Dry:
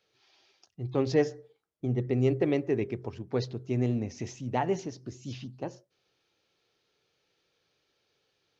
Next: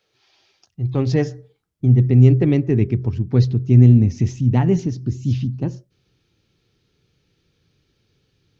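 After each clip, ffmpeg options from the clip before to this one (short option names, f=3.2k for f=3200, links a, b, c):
-af "asubboost=boost=10.5:cutoff=200,volume=5dB"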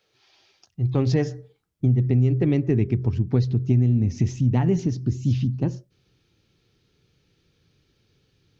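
-af "acompressor=threshold=-16dB:ratio=6"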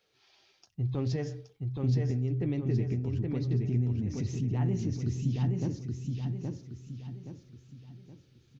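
-af "alimiter=limit=-19.5dB:level=0:latency=1:release=140,flanger=delay=4.2:depth=4.8:regen=-75:speed=0.31:shape=sinusoidal,aecho=1:1:822|1644|2466|3288|4110:0.668|0.267|0.107|0.0428|0.0171"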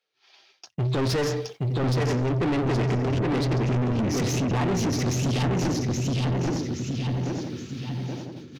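-filter_complex "[0:a]agate=range=-33dB:threshold=-52dB:ratio=3:detection=peak,asplit=2[a][b];[b]adelay=908,lowpass=f=2k:p=1,volume=-11.5dB,asplit=2[c][d];[d]adelay=908,lowpass=f=2k:p=1,volume=0.38,asplit=2[e][f];[f]adelay=908,lowpass=f=2k:p=1,volume=0.38,asplit=2[g][h];[h]adelay=908,lowpass=f=2k:p=1,volume=0.38[i];[a][c][e][g][i]amix=inputs=5:normalize=0,asplit=2[j][k];[k]highpass=f=720:p=1,volume=34dB,asoftclip=type=tanh:threshold=-17dB[l];[j][l]amix=inputs=2:normalize=0,lowpass=f=5k:p=1,volume=-6dB"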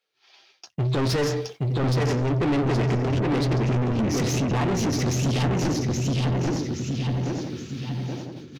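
-filter_complex "[0:a]asplit=2[a][b];[b]adelay=14,volume=-13.5dB[c];[a][c]amix=inputs=2:normalize=0,volume=1dB"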